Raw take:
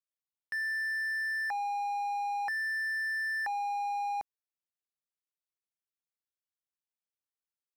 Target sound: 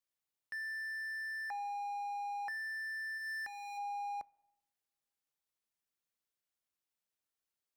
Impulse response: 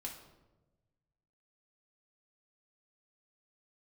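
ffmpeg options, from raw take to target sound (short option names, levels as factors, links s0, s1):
-filter_complex "[0:a]asplit=3[s0][s1][s2];[s0]afade=t=out:st=3.17:d=0.02[s3];[s1]equalizer=f=780:t=o:w=1.4:g=-13.5,afade=t=in:st=3.17:d=0.02,afade=t=out:st=3.77:d=0.02[s4];[s2]afade=t=in:st=3.77:d=0.02[s5];[s3][s4][s5]amix=inputs=3:normalize=0,alimiter=level_in=5.01:limit=0.0631:level=0:latency=1:release=431,volume=0.2,asplit=2[s6][s7];[1:a]atrim=start_sample=2205[s8];[s7][s8]afir=irnorm=-1:irlink=0,volume=0.15[s9];[s6][s9]amix=inputs=2:normalize=0,volume=1.26"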